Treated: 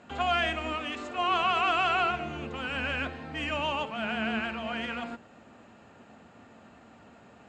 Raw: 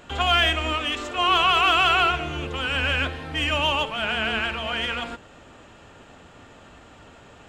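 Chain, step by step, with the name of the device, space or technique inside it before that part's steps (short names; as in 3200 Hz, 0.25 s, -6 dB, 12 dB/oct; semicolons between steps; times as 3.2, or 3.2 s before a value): car door speaker (speaker cabinet 90–7300 Hz, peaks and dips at 220 Hz +10 dB, 720 Hz +4 dB, 3300 Hz -7 dB, 5700 Hz -5 dB); gain -7 dB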